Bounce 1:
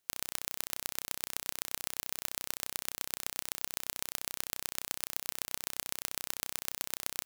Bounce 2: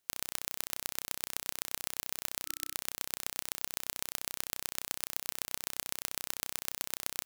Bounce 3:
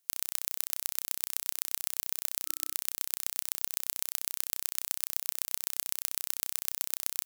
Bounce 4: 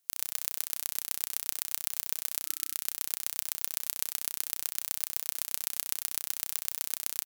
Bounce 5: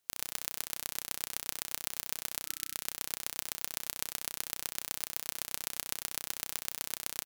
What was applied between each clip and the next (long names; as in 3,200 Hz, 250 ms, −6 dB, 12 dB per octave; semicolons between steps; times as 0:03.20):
gain on a spectral selection 0:02.46–0:02.75, 320–1,300 Hz −28 dB
high-shelf EQ 4,700 Hz +10.5 dB; level −4.5 dB
repeating echo 101 ms, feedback 27%, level −15 dB
high-shelf EQ 5,400 Hz −9 dB; level +3 dB